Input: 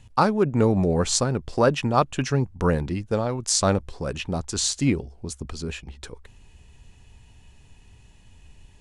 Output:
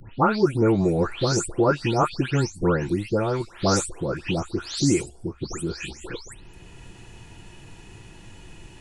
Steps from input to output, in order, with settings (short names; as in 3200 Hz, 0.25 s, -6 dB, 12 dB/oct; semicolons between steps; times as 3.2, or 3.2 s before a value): spectral delay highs late, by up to 0.283 s; small resonant body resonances 350/1400 Hz, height 9 dB; three-band squash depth 40%